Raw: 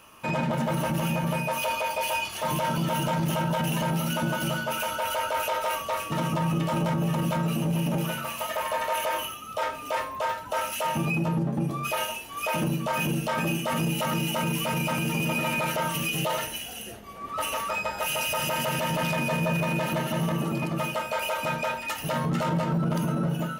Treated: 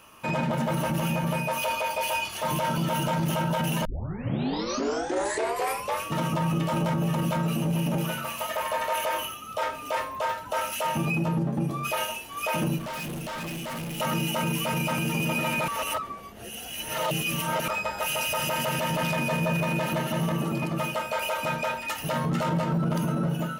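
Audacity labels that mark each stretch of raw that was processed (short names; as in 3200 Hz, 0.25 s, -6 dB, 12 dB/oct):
3.850000	3.850000	tape start 2.20 s
12.780000	14.000000	overloaded stage gain 32.5 dB
15.680000	17.680000	reverse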